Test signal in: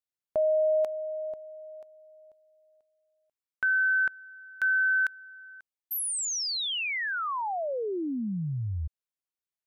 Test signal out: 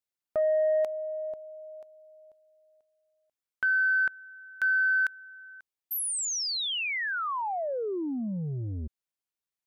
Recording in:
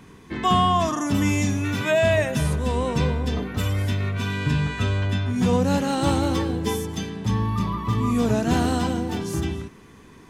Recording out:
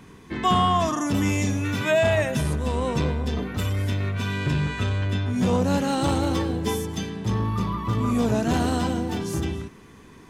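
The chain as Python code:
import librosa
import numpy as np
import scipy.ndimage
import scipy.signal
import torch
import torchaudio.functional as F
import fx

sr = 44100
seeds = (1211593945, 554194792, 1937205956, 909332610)

y = fx.transformer_sat(x, sr, knee_hz=280.0)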